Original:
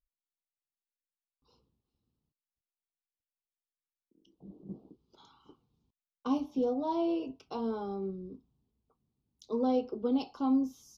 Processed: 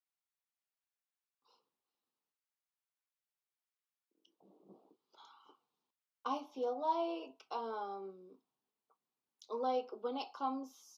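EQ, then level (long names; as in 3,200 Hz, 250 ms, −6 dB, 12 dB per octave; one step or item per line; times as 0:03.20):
high-pass filter 890 Hz 12 dB per octave
high-shelf EQ 2,200 Hz −9.5 dB
+5.5 dB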